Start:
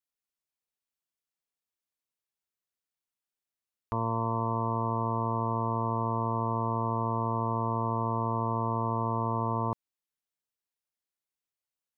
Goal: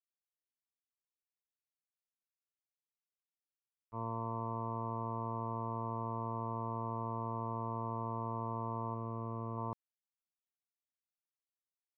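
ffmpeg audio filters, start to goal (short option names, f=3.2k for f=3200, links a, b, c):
-filter_complex "[0:a]agate=range=-33dB:threshold=-22dB:ratio=3:detection=peak,asettb=1/sr,asplit=3[a][b][c];[a]atrim=end=8.944[d];[b]atrim=start=8.94:end=9.58,asetpts=PTS-STARTPTS,afade=t=in:d=0.004:c=qsin,afade=t=out:st=0.636:d=0.004:c=qsin,equalizer=f=850:t=o:w=0.52:g=-9.5[e];[c]atrim=start=9.576[f];[d][e]acrossfade=d=0.004:c1=hsin:c2=qsin[g];[g][f]acrossfade=d=0.004:c1=qsin:c2=hsin,volume=-2.5dB"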